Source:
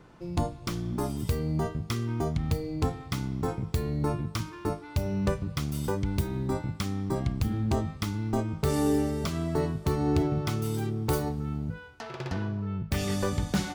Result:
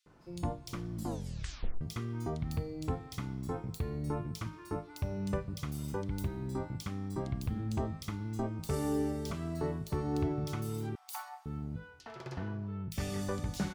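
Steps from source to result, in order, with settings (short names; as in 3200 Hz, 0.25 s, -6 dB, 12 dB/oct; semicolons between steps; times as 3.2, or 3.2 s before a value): 10.89–11.4 steep high-pass 690 Hz 96 dB/oct; bands offset in time highs, lows 60 ms, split 3100 Hz; 0.93 tape stop 0.88 s; gain -7 dB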